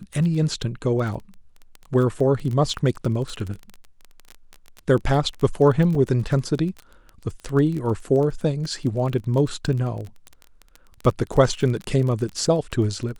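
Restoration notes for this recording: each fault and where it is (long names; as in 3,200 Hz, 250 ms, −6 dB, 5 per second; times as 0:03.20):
surface crackle 19 per second −27 dBFS
0:05.95: drop-out 2.6 ms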